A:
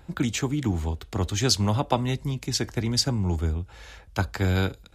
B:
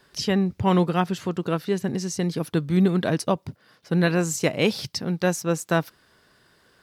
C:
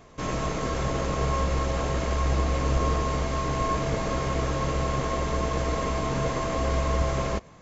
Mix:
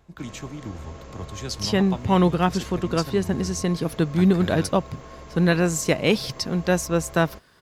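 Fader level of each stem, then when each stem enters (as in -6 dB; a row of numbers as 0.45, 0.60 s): -10.0, +1.5, -14.5 dB; 0.00, 1.45, 0.00 s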